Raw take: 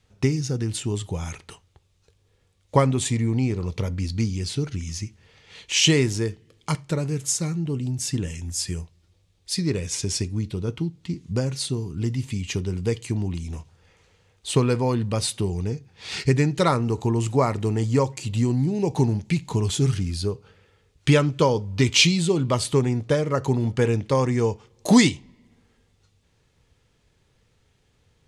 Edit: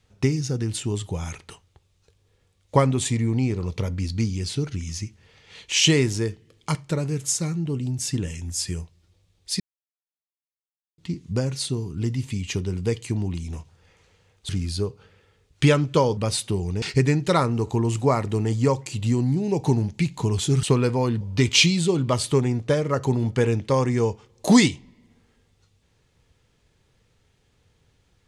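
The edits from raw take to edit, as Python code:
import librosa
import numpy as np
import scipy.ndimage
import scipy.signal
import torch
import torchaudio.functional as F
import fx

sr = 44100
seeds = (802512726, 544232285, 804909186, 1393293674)

y = fx.edit(x, sr, fx.silence(start_s=9.6, length_s=1.38),
    fx.swap(start_s=14.49, length_s=0.58, other_s=19.94, other_length_s=1.68),
    fx.cut(start_s=15.72, length_s=0.41), tone=tone)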